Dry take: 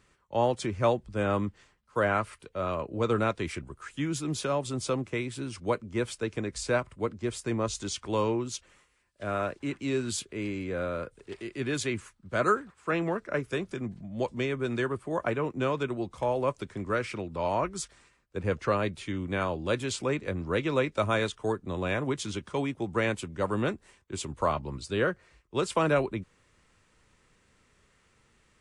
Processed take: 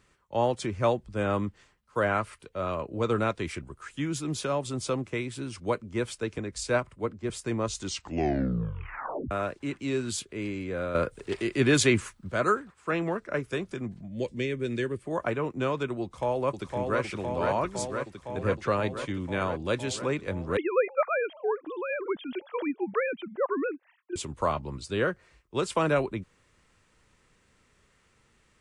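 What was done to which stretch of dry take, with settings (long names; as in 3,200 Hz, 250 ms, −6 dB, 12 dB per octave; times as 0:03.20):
0:06.38–0:07.30: multiband upward and downward expander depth 40%
0:07.81: tape stop 1.50 s
0:10.95–0:12.32: clip gain +9 dB
0:14.08–0:15.06: flat-topped bell 980 Hz −12 dB 1.3 octaves
0:16.02–0:17.01: delay throw 510 ms, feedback 80%, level −4 dB
0:20.57–0:24.16: three sine waves on the formant tracks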